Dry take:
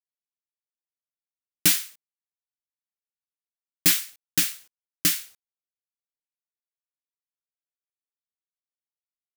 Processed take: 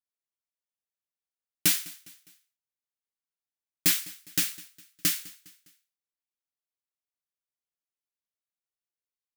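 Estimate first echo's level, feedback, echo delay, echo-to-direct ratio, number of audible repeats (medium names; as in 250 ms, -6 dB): -21.0 dB, 45%, 204 ms, -20.0 dB, 3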